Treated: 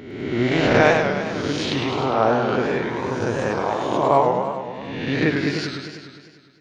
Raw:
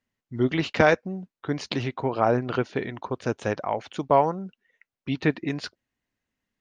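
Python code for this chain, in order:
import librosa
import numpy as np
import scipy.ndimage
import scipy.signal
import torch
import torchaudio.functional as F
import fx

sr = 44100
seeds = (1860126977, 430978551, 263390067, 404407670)

y = fx.spec_swells(x, sr, rise_s=1.21)
y = fx.echo_warbled(y, sr, ms=101, feedback_pct=69, rate_hz=2.8, cents=176, wet_db=-5.0)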